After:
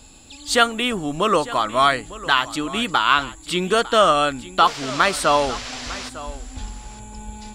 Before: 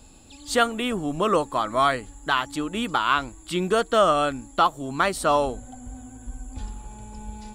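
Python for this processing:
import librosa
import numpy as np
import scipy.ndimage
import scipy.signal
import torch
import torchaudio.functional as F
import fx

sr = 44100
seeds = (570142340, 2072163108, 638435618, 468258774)

y = fx.peak_eq(x, sr, hz=3700.0, db=6.5, octaves=2.9)
y = fx.dmg_noise_band(y, sr, seeds[0], low_hz=420.0, high_hz=5900.0, level_db=-35.0, at=(4.66, 6.08), fade=0.02)
y = y + 10.0 ** (-17.0 / 20.0) * np.pad(y, (int(902 * sr / 1000.0), 0))[:len(y)]
y = F.gain(torch.from_numpy(y), 1.5).numpy()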